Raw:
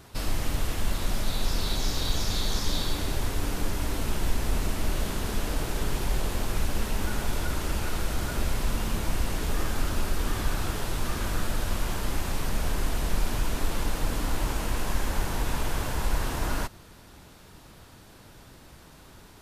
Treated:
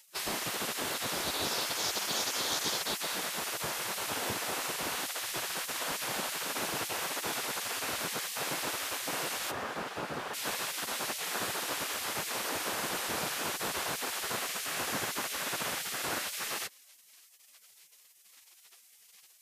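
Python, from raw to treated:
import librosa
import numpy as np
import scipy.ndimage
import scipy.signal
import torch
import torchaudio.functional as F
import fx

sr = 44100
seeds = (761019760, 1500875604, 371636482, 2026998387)

y = fx.lowpass(x, sr, hz=1500.0, slope=6, at=(9.5, 10.33), fade=0.02)
y = fx.spec_gate(y, sr, threshold_db=-25, keep='weak')
y = y * 10.0 ** (3.0 / 20.0)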